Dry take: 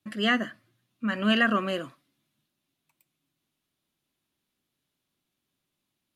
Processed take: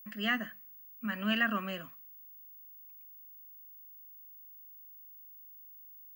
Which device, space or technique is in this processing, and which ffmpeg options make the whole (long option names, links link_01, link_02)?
old television with a line whistle: -af "highpass=frequency=170:width=0.5412,highpass=frequency=170:width=1.3066,equalizer=frequency=170:width_type=q:width=4:gain=7,equalizer=frequency=330:width_type=q:width=4:gain=-10,equalizer=frequency=490:width_type=q:width=4:gain=-7,equalizer=frequency=1800:width_type=q:width=4:gain=3,equalizer=frequency=2600:width_type=q:width=4:gain=4,equalizer=frequency=3800:width_type=q:width=4:gain=-6,lowpass=frequency=7600:width=0.5412,lowpass=frequency=7600:width=1.3066,aeval=exprs='val(0)+0.00794*sin(2*PI*15625*n/s)':channel_layout=same,volume=-8dB"